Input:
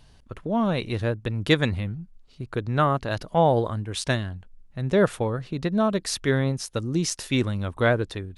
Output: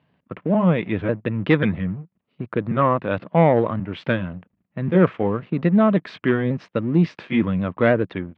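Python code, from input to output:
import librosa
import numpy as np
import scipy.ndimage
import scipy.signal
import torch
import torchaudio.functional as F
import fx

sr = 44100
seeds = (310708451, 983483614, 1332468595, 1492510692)

y = fx.pitch_trill(x, sr, semitones=-1.5, every_ms=542)
y = fx.leveller(y, sr, passes=2)
y = fx.cabinet(y, sr, low_hz=120.0, low_slope=24, high_hz=2500.0, hz=(130.0, 180.0, 400.0, 810.0, 1500.0), db=(-5, 4, -3, -4, -4))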